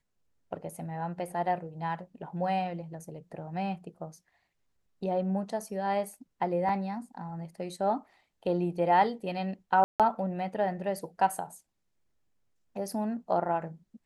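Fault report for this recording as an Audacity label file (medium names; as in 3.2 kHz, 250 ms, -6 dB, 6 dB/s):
6.690000	6.690000	dropout 2.8 ms
9.840000	10.000000	dropout 157 ms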